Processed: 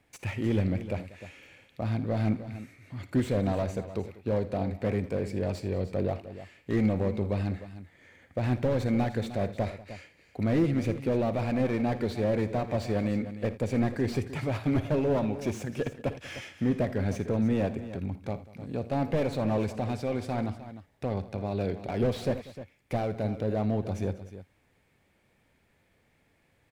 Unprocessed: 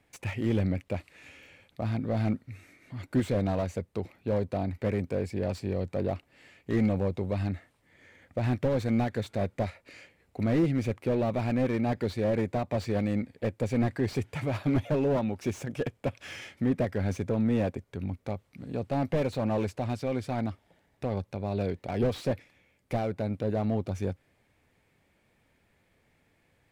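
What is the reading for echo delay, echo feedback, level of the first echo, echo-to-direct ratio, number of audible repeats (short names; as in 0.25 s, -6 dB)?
56 ms, no steady repeat, -16.0 dB, -10.0 dB, 3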